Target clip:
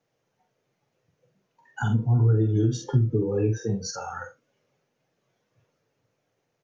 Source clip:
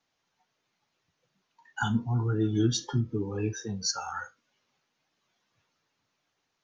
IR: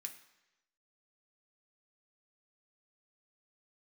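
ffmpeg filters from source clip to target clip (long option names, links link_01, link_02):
-filter_complex "[0:a]asplit=2[link_01][link_02];[link_02]adelay=45,volume=-6dB[link_03];[link_01][link_03]amix=inputs=2:normalize=0,acompressor=threshold=-26dB:ratio=6,equalizer=frequency=125:width_type=o:width=1:gain=11,equalizer=frequency=500:width_type=o:width=1:gain=12,equalizer=frequency=1000:width_type=o:width=1:gain=-4,equalizer=frequency=4000:width_type=o:width=1:gain=-7"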